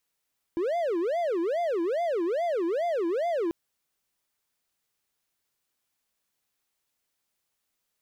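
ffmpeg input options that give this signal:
-f lavfi -i "aevalsrc='0.075*(1-4*abs(mod((515*t-184/(2*PI*2.4)*sin(2*PI*2.4*t))+0.25,1)-0.5))':d=2.94:s=44100"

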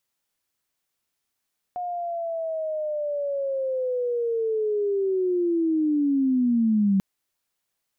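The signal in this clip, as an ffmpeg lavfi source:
-f lavfi -i "aevalsrc='pow(10,(-27+10*t/5.24)/20)*sin(2*PI*(720*t-530*t*t/(2*5.24)))':d=5.24:s=44100"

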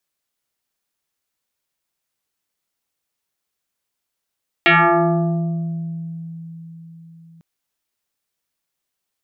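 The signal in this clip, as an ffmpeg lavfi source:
-f lavfi -i "aevalsrc='0.376*pow(10,-3*t/4.69)*sin(2*PI*165*t+5.7*pow(10,-3*t/1.92)*sin(2*PI*3.1*165*t))':d=2.75:s=44100"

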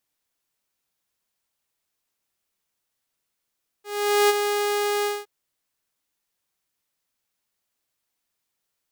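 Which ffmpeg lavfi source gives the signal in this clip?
-f lavfi -i "aevalsrc='0.251*(2*mod(412*t,1)-1)':d=1.416:s=44100,afade=t=in:d=0.454,afade=t=out:st=0.454:d=0.026:silence=0.447,afade=t=out:st=1.21:d=0.206"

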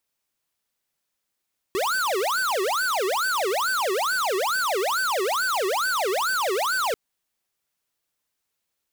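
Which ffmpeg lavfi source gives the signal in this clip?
-f lavfi -i "aevalsrc='0.0631*(2*lt(mod((954.5*t-585.5/(2*PI*2.3)*sin(2*PI*2.3*t)),1),0.5)-1)':d=5.19:s=44100"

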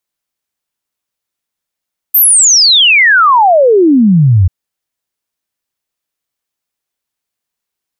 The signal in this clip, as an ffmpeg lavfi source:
-f lavfi -i "aevalsrc='0.668*clip(min(t,2.34-t)/0.01,0,1)*sin(2*PI*14000*2.34/log(85/14000)*(exp(log(85/14000)*t/2.34)-1))':d=2.34:s=44100"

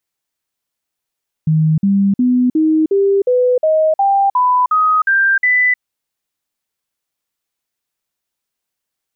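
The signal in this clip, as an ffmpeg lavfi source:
-f lavfi -i "aevalsrc='0.335*clip(min(mod(t,0.36),0.31-mod(t,0.36))/0.005,0,1)*sin(2*PI*157*pow(2,floor(t/0.36)/3)*mod(t,0.36))':d=4.32:s=44100"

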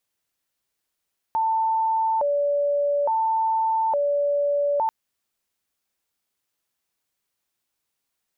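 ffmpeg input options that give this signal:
-f lavfi -i "aevalsrc='0.112*sin(2*PI*(733*t+158/0.58*(0.5-abs(mod(0.58*t,1)-0.5))))':d=3.54:s=44100"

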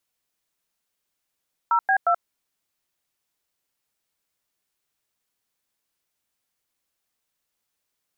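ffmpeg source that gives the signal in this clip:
-f lavfi -i "aevalsrc='0.112*clip(min(mod(t,0.178),0.08-mod(t,0.178))/0.002,0,1)*(eq(floor(t/0.178),0)*(sin(2*PI*941*mod(t,0.178))+sin(2*PI*1336*mod(t,0.178)))+eq(floor(t/0.178),1)*(sin(2*PI*770*mod(t,0.178))+sin(2*PI*1633*mod(t,0.178)))+eq(floor(t/0.178),2)*(sin(2*PI*697*mod(t,0.178))+sin(2*PI*1336*mod(t,0.178))))':d=0.534:s=44100"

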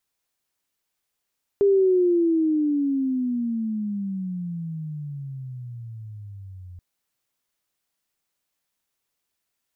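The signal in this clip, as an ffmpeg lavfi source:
-f lavfi -i "aevalsrc='pow(10,(-14-24*t/5.18)/20)*sin(2*PI*405*5.18/(-26.5*log(2)/12)*(exp(-26.5*log(2)/12*t/5.18)-1))':d=5.18:s=44100"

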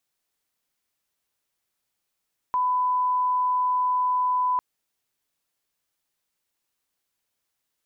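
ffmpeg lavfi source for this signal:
-f lavfi -i "sine=f=1000:d=2.05:r=44100,volume=-1.94dB"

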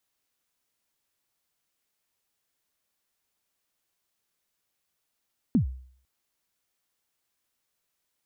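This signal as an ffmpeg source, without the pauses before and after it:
-f lavfi -i "aevalsrc='0.168*pow(10,-3*t/0.55)*sin(2*PI*(280*0.107/log(64/280)*(exp(log(64/280)*min(t,0.107)/0.107)-1)+64*max(t-0.107,0)))':d=0.5:s=44100"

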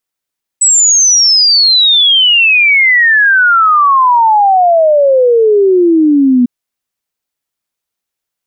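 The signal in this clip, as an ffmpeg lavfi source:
-f lavfi -i "aevalsrc='0.596*clip(min(t,5.85-t)/0.01,0,1)*sin(2*PI*8000*5.85/log(240/8000)*(exp(log(240/8000)*t/5.85)-1))':d=5.85:s=44100"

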